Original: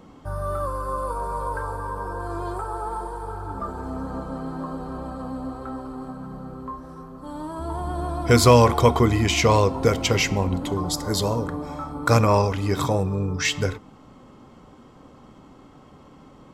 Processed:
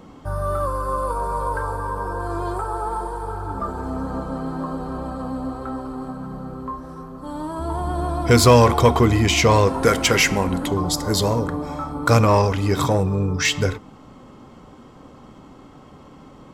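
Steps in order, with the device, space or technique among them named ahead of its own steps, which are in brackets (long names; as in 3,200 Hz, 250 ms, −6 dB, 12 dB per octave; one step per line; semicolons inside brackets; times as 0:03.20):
0:09.67–0:10.66: graphic EQ with 15 bands 100 Hz −7 dB, 1,600 Hz +9 dB, 10,000 Hz +11 dB
parallel distortion (in parallel at −5 dB: hard clipping −19 dBFS, distortion −7 dB)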